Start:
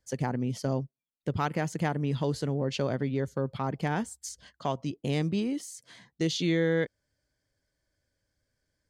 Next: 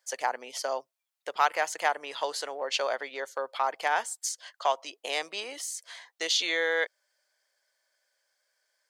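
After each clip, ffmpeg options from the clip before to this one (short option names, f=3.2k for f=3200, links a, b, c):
-af "highpass=f=640:w=0.5412,highpass=f=640:w=1.3066,volume=7.5dB"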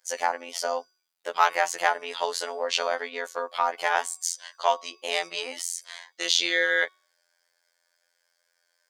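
-af "afftfilt=real='hypot(re,im)*cos(PI*b)':imag='0':win_size=2048:overlap=0.75,bandreject=f=371.1:t=h:w=4,bandreject=f=742.2:t=h:w=4,bandreject=f=1.1133k:t=h:w=4,bandreject=f=1.4844k:t=h:w=4,bandreject=f=1.8555k:t=h:w=4,bandreject=f=2.2266k:t=h:w=4,bandreject=f=2.5977k:t=h:w=4,bandreject=f=2.9688k:t=h:w=4,bandreject=f=3.3399k:t=h:w=4,bandreject=f=3.711k:t=h:w=4,bandreject=f=4.0821k:t=h:w=4,bandreject=f=4.4532k:t=h:w=4,bandreject=f=4.8243k:t=h:w=4,bandreject=f=5.1954k:t=h:w=4,bandreject=f=5.5665k:t=h:w=4,bandreject=f=5.9376k:t=h:w=4,bandreject=f=6.3087k:t=h:w=4,bandreject=f=6.6798k:t=h:w=4,bandreject=f=7.0509k:t=h:w=4,bandreject=f=7.422k:t=h:w=4,bandreject=f=7.7931k:t=h:w=4,bandreject=f=8.1642k:t=h:w=4,bandreject=f=8.5353k:t=h:w=4,volume=7dB"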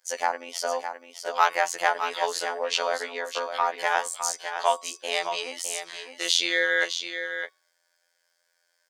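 -af "aecho=1:1:610:0.376"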